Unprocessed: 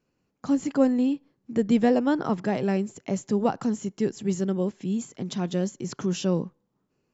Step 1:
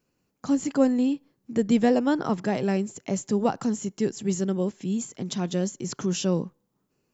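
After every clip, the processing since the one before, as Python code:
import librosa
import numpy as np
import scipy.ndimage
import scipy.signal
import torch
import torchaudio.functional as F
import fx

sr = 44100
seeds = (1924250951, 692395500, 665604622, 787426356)

y = fx.high_shelf(x, sr, hz=6800.0, db=10.5)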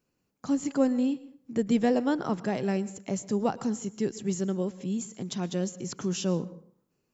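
y = fx.rev_plate(x, sr, seeds[0], rt60_s=0.58, hf_ratio=0.65, predelay_ms=100, drr_db=17.5)
y = y * 10.0 ** (-3.5 / 20.0)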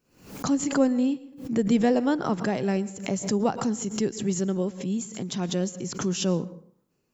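y = fx.pre_swell(x, sr, db_per_s=110.0)
y = y * 10.0 ** (2.5 / 20.0)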